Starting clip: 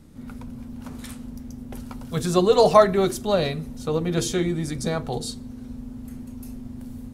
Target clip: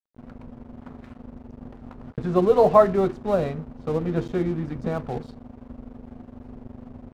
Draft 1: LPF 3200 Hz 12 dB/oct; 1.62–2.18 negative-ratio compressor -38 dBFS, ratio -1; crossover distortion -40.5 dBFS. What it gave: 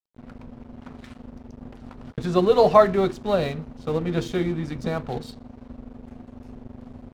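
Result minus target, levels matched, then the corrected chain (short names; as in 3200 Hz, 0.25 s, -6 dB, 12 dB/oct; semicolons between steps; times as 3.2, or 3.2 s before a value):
4000 Hz band +10.0 dB
LPF 1400 Hz 12 dB/oct; 1.62–2.18 negative-ratio compressor -38 dBFS, ratio -1; crossover distortion -40.5 dBFS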